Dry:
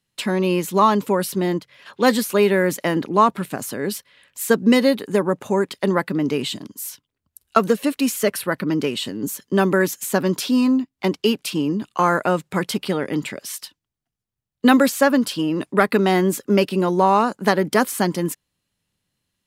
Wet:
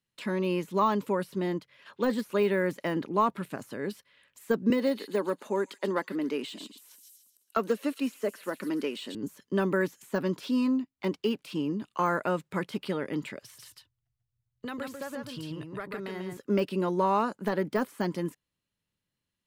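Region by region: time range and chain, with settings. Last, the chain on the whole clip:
4.7–9.15 HPF 220 Hz 24 dB/oct + thin delay 0.136 s, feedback 39%, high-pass 3900 Hz, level -4 dB
13.42–16.37 resonant low shelf 160 Hz +10 dB, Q 3 + compressor 3:1, threshold -28 dBFS + echo 0.141 s -4.5 dB
whole clip: notch 750 Hz, Q 12; de-esser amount 65%; tone controls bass -1 dB, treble -4 dB; gain -8.5 dB

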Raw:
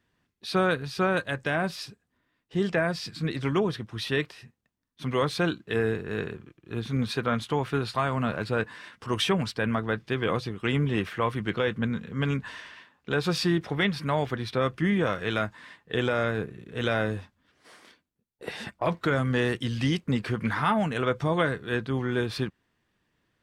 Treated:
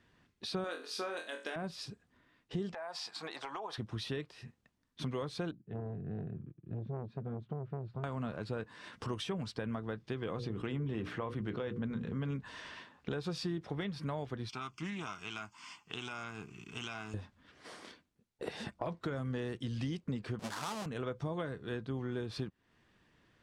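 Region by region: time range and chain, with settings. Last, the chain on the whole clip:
0.64–1.56 brick-wall FIR high-pass 200 Hz + tilt +2.5 dB/oct + flutter echo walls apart 4 m, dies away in 0.28 s
2.74–3.78 resonant high-pass 820 Hz, resonance Q 3.9 + compressor, threshold -32 dBFS
5.51–8.04 band-pass 140 Hz, Q 1.6 + core saturation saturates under 590 Hz
10.35–12.36 high shelf 4200 Hz -8 dB + notches 60/120/180/240/300/360/420/480/540 Hz + fast leveller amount 50%
14.49–17.14 tilt +4 dB/oct + fixed phaser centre 2600 Hz, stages 8 + Doppler distortion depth 0.14 ms
20.39–20.86 half-waves squared off + HPF 580 Hz 6 dB/oct
whole clip: compressor 4:1, threshold -42 dBFS; dynamic EQ 2000 Hz, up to -7 dB, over -59 dBFS, Q 0.74; Bessel low-pass 7200 Hz, order 2; gain +5 dB

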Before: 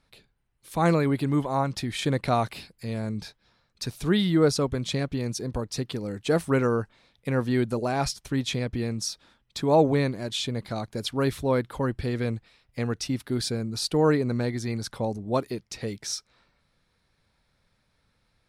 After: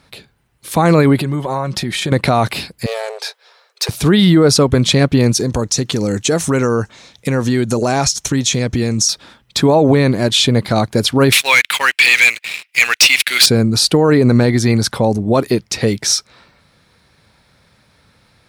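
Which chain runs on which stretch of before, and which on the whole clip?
1.18–2.12 comb 5.4 ms, depth 42% + compressor, threshold -34 dBFS
2.86–3.89 hard clip -29 dBFS + brick-wall FIR high-pass 380 Hz
5.39–9.09 bell 6500 Hz +13.5 dB 0.73 oct + compressor 4:1, threshold -30 dBFS + notch 4800 Hz, Q 16
11.32–13.46 resonant high-pass 2400 Hz, resonance Q 4.5 + sample leveller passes 3
whole clip: HPF 66 Hz; maximiser +19.5 dB; gain -2 dB

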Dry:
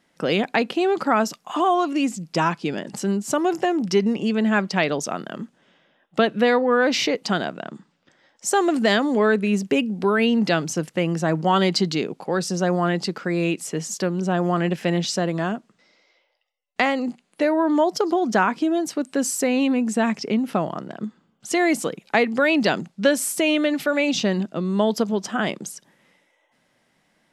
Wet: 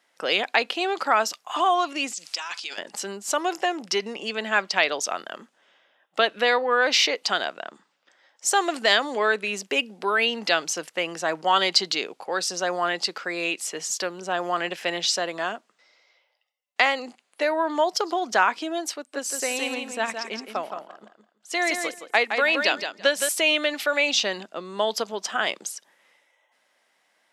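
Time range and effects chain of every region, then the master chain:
2.13–2.78 weighting filter ITU-R 468 + compressor 2.5:1, threshold -40 dBFS + transient shaper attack +4 dB, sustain +12 dB
18.96–23.29 feedback echo 0.167 s, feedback 23%, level -5 dB + upward expander, over -36 dBFS
whole clip: HPF 590 Hz 12 dB/oct; dynamic EQ 3800 Hz, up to +5 dB, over -40 dBFS, Q 0.76

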